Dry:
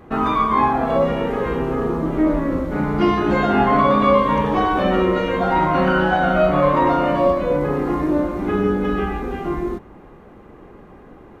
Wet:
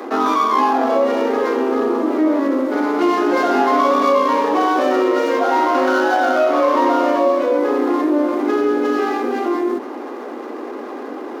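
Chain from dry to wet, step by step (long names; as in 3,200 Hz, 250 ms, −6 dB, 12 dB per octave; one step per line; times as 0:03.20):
running median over 15 samples
Butterworth high-pass 240 Hz 96 dB per octave
envelope flattener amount 50%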